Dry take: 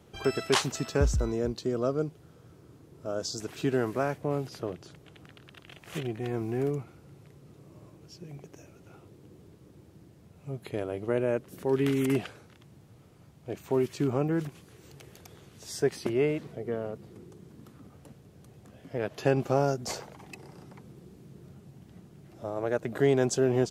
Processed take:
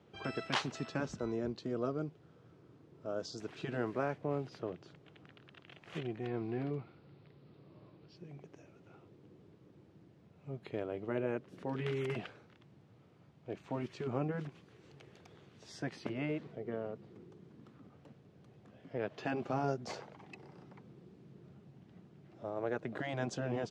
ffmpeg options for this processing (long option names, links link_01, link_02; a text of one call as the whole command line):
ffmpeg -i in.wav -filter_complex "[0:a]asettb=1/sr,asplit=3[link_01][link_02][link_03];[link_01]atrim=end=6.274[link_04];[link_02]atrim=start=6.27:end=8.16,asetpts=PTS-STARTPTS,afade=type=in:duration=0.004:curve=qsin,afade=type=out:start_time=1.886:duration=0.004:curve=qsin,highshelf=frequency=5300:width_type=q:width=3:gain=-6[link_05];[link_03]atrim=start=8.156[link_06];[link_04][link_05]acrossfade=duration=0.004:curve1=hsin:curve2=qsin[link_07];[link_07][link_06]acrossfade=duration=0.004:curve1=qsin:curve2=hsin,lowpass=3900,afftfilt=real='re*lt(hypot(re,im),0.355)':imag='im*lt(hypot(re,im),0.355)':win_size=1024:overlap=0.75,highpass=110,volume=-5.5dB" out.wav